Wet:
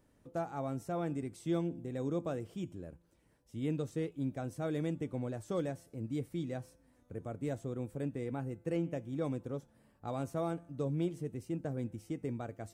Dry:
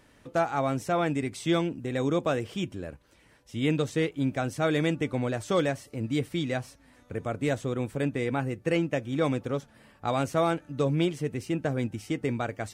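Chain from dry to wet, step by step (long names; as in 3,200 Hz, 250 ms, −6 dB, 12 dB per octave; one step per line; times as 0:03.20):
parametric band 2,600 Hz −11.5 dB 2.9 octaves
tuned comb filter 170 Hz, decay 0.68 s, harmonics all, mix 40%
level −3.5 dB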